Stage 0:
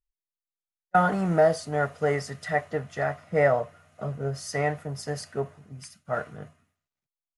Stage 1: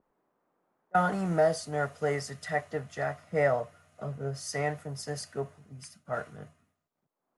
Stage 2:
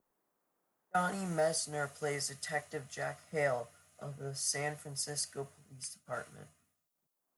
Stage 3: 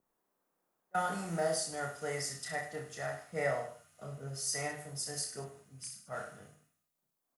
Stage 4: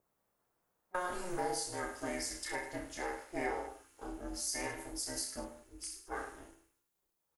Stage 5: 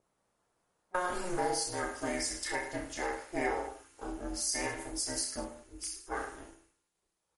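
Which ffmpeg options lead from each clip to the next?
-filter_complex "[0:a]acrossover=split=140|1200|1600[s0][s1][s2][s3];[s1]acompressor=mode=upward:threshold=0.00794:ratio=2.5[s4];[s0][s4][s2][s3]amix=inputs=4:normalize=0,adynamicequalizer=threshold=0.00631:dfrequency=3800:dqfactor=0.7:tfrequency=3800:tqfactor=0.7:attack=5:release=100:ratio=0.375:range=2.5:mode=boostabove:tftype=highshelf,volume=0.596"
-af "crystalizer=i=4:c=0,volume=0.398"
-af "aecho=1:1:30|64.5|104.2|149.8|202.3:0.631|0.398|0.251|0.158|0.1,volume=0.75"
-filter_complex "[0:a]acompressor=threshold=0.0141:ratio=2,aeval=exprs='val(0)*sin(2*PI*180*n/s)':c=same,asplit=2[s0][s1];[s1]adelay=15,volume=0.282[s2];[s0][s2]amix=inputs=2:normalize=0,volume=1.5"
-af "volume=1.68" -ar 44100 -c:a libmp3lame -b:a 48k

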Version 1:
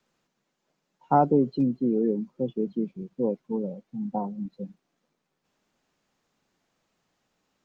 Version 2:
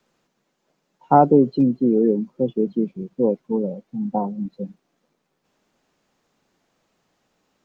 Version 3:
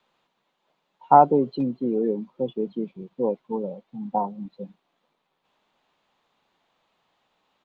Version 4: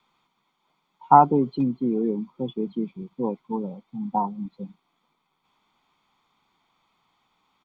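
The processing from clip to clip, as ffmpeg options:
-af "equalizer=f=450:t=o:w=2.2:g=3,volume=1.68"
-af "firequalizer=gain_entry='entry(280,0);entry(940,12);entry(1500,6);entry(3600,12);entry(5300,-2)':delay=0.05:min_phase=1,volume=0.398"
-af "aecho=1:1:0.9:0.63"

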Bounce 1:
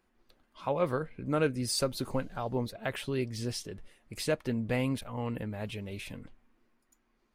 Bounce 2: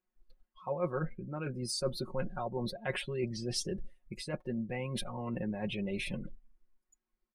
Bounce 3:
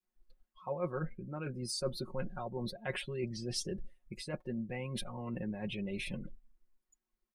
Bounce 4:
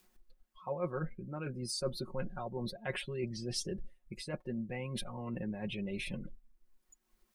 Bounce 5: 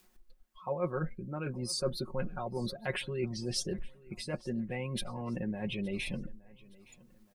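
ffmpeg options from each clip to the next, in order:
-af "areverse,acompressor=threshold=0.0141:ratio=20,areverse,afftdn=nr=24:nf=-51,aecho=1:1:5.5:0.81,volume=1.68"
-af "adynamicequalizer=threshold=0.00501:dfrequency=770:dqfactor=0.81:tfrequency=770:tqfactor=0.81:attack=5:release=100:ratio=0.375:range=2:mode=cutabove:tftype=bell,volume=0.794"
-af "acompressor=mode=upward:threshold=0.00224:ratio=2.5"
-af "aecho=1:1:868|1736|2604:0.0708|0.0283|0.0113,volume=1.41"

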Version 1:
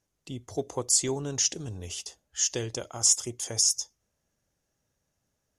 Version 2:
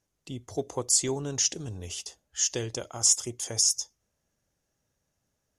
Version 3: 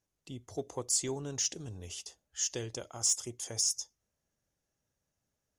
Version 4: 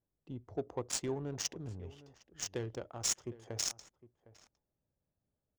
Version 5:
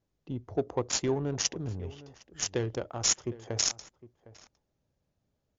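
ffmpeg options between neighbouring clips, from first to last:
-af anull
-af "asoftclip=type=tanh:threshold=0.282,volume=0.501"
-filter_complex "[0:a]adynamicsmooth=sensitivity=5.5:basefreq=940,asplit=2[s0][s1];[s1]adelay=758,volume=0.126,highshelf=f=4000:g=-17.1[s2];[s0][s2]amix=inputs=2:normalize=0"
-af "volume=2.66" -ar 16000 -c:a libmp3lame -b:a 96k

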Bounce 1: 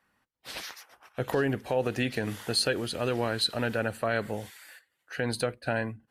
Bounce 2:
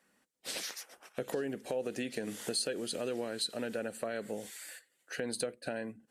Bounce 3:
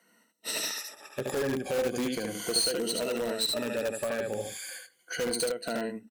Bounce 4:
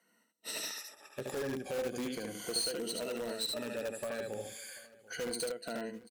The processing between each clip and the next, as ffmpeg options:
-af "lowshelf=f=140:t=q:w=1.5:g=-10,acompressor=threshold=0.0126:ratio=3,equalizer=f=500:t=o:w=1:g=5,equalizer=f=1000:t=o:w=1:g=-6,equalizer=f=8000:t=o:w=1:g=10"
-filter_complex "[0:a]afftfilt=real='re*pow(10,15/40*sin(2*PI*(1.9*log(max(b,1)*sr/1024/100)/log(2)-(-0.36)*(pts-256)/sr)))':imag='im*pow(10,15/40*sin(2*PI*(1.9*log(max(b,1)*sr/1024/100)/log(2)-(-0.36)*(pts-256)/sr)))':win_size=1024:overlap=0.75,aecho=1:1:74:0.668,asplit=2[s0][s1];[s1]aeval=exprs='(mod(21.1*val(0)+1,2)-1)/21.1':c=same,volume=0.447[s2];[s0][s2]amix=inputs=2:normalize=0"
-af "aecho=1:1:739:0.0891,volume=0.447"

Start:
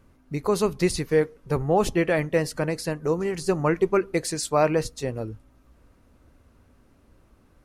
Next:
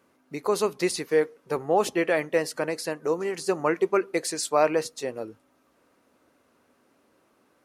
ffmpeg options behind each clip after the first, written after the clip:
-af "highpass=320"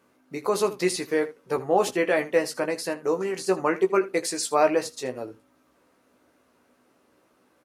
-af "aecho=1:1:16|79:0.501|0.141"

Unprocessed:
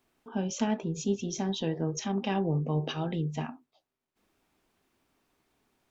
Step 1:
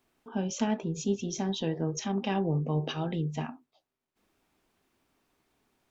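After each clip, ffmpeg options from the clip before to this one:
-af anull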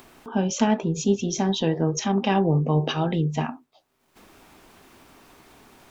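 -af "acompressor=mode=upward:threshold=0.00447:ratio=2.5,equalizer=f=1000:t=o:w=1.4:g=2.5,volume=2.37"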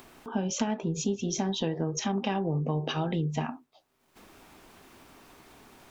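-af "acompressor=threshold=0.0708:ratio=6,volume=0.794"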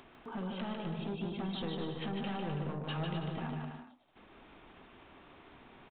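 -af "aresample=8000,asoftclip=type=tanh:threshold=0.0282,aresample=44100,aecho=1:1:150|255|328.5|380|416:0.631|0.398|0.251|0.158|0.1,volume=0.631"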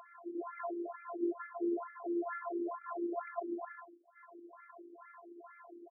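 -af "highpass=220,lowpass=2300,afftfilt=real='hypot(re,im)*cos(PI*b)':imag='0':win_size=512:overlap=0.75,afftfilt=real='re*between(b*sr/1024,300*pow(1700/300,0.5+0.5*sin(2*PI*2.2*pts/sr))/1.41,300*pow(1700/300,0.5+0.5*sin(2*PI*2.2*pts/sr))*1.41)':imag='im*between(b*sr/1024,300*pow(1700/300,0.5+0.5*sin(2*PI*2.2*pts/sr))/1.41,300*pow(1700/300,0.5+0.5*sin(2*PI*2.2*pts/sr))*1.41)':win_size=1024:overlap=0.75,volume=3.98"

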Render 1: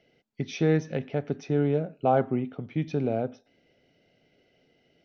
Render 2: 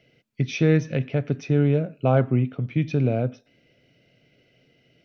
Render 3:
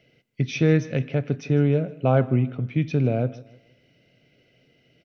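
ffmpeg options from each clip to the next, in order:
-af "equalizer=f=125:t=o:w=0.33:g=10,equalizer=f=400:t=o:w=0.33:g=-3,equalizer=f=800:t=o:w=0.33:g=-9,equalizer=f=2500:t=o:w=0.33:g=5,volume=1.58"
-af "aecho=1:1:156|312|468:0.1|0.037|0.0137"

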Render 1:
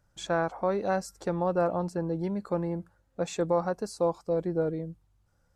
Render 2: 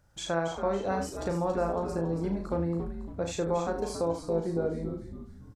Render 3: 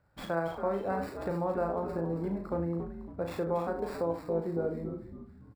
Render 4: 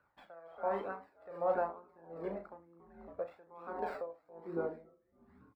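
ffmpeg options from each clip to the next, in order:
-filter_complex "[0:a]asplit=2[s0][s1];[s1]aecho=0:1:36|77:0.531|0.335[s2];[s0][s2]amix=inputs=2:normalize=0,acompressor=threshold=0.00794:ratio=1.5,asplit=2[s3][s4];[s4]asplit=5[s5][s6][s7][s8][s9];[s5]adelay=278,afreqshift=-120,volume=0.376[s10];[s6]adelay=556,afreqshift=-240,volume=0.176[s11];[s7]adelay=834,afreqshift=-360,volume=0.0832[s12];[s8]adelay=1112,afreqshift=-480,volume=0.0389[s13];[s9]adelay=1390,afreqshift=-600,volume=0.0184[s14];[s10][s11][s12][s13][s14]amix=inputs=5:normalize=0[s15];[s3][s15]amix=inputs=2:normalize=0,volume=1.5"
-filter_complex "[0:a]highpass=f=87:p=1,acrossover=split=550|2800[s0][s1][s2];[s2]acrusher=samples=14:mix=1:aa=0.000001[s3];[s0][s1][s3]amix=inputs=3:normalize=0,volume=0.794"
-filter_complex "[0:a]flanger=delay=0.7:depth=1.1:regen=20:speed=1.1:shape=triangular,acrossover=split=310 3100:gain=0.112 1 0.158[s0][s1][s2];[s0][s1][s2]amix=inputs=3:normalize=0,aeval=exprs='val(0)*pow(10,-26*(0.5-0.5*cos(2*PI*1.3*n/s))/20)':c=same,volume=2.11"

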